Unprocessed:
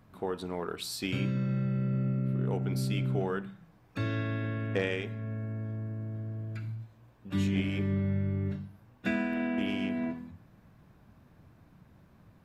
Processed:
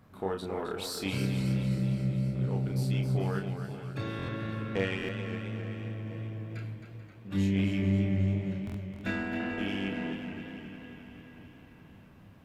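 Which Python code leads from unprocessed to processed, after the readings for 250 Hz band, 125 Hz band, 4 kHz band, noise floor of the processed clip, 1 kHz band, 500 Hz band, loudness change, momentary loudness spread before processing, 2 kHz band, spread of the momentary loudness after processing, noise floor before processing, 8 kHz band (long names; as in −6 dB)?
+0.5 dB, +1.0 dB, +0.5 dB, −54 dBFS, +0.5 dB, 0.0 dB, +0.5 dB, 9 LU, +0.5 dB, 16 LU, −61 dBFS, can't be measured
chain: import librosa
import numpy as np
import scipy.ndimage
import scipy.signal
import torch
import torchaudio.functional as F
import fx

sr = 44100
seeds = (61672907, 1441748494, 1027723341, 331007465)

p1 = fx.diode_clip(x, sr, knee_db=-25.0)
p2 = p1 + fx.echo_feedback(p1, sr, ms=437, feedback_pct=59, wet_db=-15, dry=0)
p3 = fx.rider(p2, sr, range_db=3, speed_s=2.0)
p4 = fx.doubler(p3, sr, ms=31.0, db=-4)
p5 = fx.buffer_glitch(p4, sr, at_s=(4.17, 4.97, 8.65), block=1024, repeats=4)
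p6 = fx.echo_warbled(p5, sr, ms=265, feedback_pct=61, rate_hz=2.8, cents=84, wet_db=-8.5)
y = p6 * 10.0 ** (-2.0 / 20.0)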